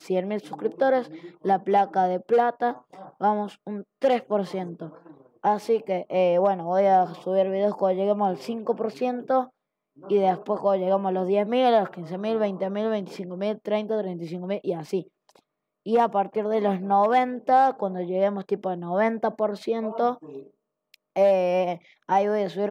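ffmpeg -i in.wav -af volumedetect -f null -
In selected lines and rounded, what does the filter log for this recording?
mean_volume: -24.6 dB
max_volume: -9.2 dB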